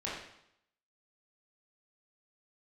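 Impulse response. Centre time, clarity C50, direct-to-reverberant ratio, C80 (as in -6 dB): 56 ms, 1.5 dB, -7.5 dB, 4.5 dB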